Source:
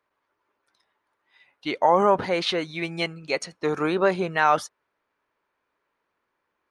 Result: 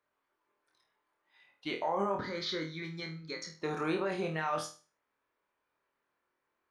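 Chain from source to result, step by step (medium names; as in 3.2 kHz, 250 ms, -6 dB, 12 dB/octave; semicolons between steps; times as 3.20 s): peak limiter -17 dBFS, peak gain reduction 9.5 dB; 2.16–3.53 s: static phaser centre 2.7 kHz, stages 6; on a send: flutter echo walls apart 4.3 m, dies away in 0.35 s; on the sum: trim -7.5 dB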